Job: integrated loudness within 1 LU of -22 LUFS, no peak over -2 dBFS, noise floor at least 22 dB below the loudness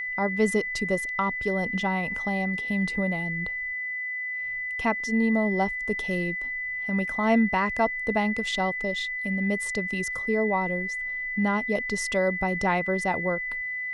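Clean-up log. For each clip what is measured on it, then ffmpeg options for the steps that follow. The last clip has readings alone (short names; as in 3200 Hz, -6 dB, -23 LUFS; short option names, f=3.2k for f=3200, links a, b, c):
steady tone 2000 Hz; tone level -29 dBFS; loudness -26.5 LUFS; peak -10.0 dBFS; loudness target -22.0 LUFS
-> -af "bandreject=f=2k:w=30"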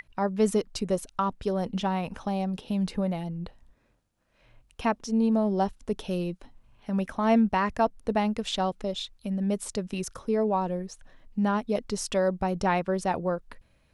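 steady tone none; loudness -28.5 LUFS; peak -11.0 dBFS; loudness target -22.0 LUFS
-> -af "volume=6.5dB"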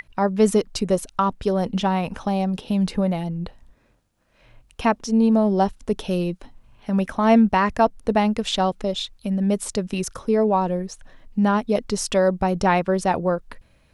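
loudness -22.0 LUFS; peak -4.5 dBFS; noise floor -60 dBFS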